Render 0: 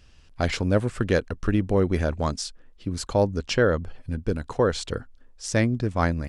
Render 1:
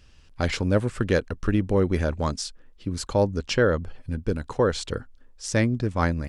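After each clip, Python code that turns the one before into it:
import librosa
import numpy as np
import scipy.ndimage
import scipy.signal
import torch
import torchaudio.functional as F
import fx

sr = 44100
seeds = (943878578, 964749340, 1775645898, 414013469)

y = fx.notch(x, sr, hz=690.0, q=12.0)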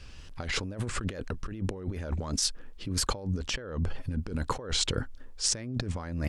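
y = fx.over_compress(x, sr, threshold_db=-33.0, ratio=-1.0)
y = fx.wow_flutter(y, sr, seeds[0], rate_hz=2.1, depth_cents=76.0)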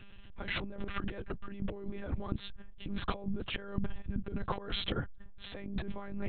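y = fx.lpc_monotone(x, sr, seeds[1], pitch_hz=200.0, order=10)
y = y * 10.0 ** (-3.5 / 20.0)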